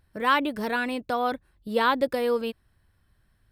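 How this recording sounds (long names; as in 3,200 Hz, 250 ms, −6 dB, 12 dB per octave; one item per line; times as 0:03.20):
background noise floor −67 dBFS
spectral slope −1.5 dB per octave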